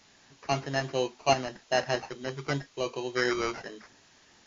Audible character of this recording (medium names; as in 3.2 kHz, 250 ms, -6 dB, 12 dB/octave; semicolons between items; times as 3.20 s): aliases and images of a low sample rate 3.5 kHz, jitter 0%; tremolo saw up 1.5 Hz, depth 45%; a quantiser's noise floor 10-bit, dither triangular; MP3